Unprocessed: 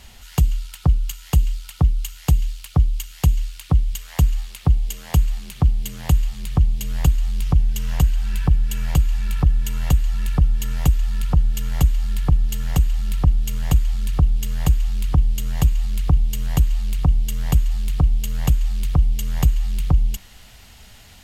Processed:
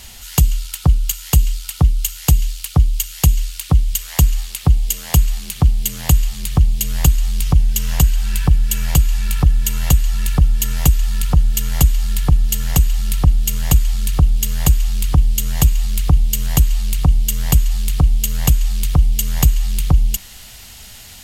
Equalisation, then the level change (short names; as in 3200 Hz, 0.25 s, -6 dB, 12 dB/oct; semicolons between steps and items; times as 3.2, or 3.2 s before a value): high shelf 3800 Hz +11 dB; +3.5 dB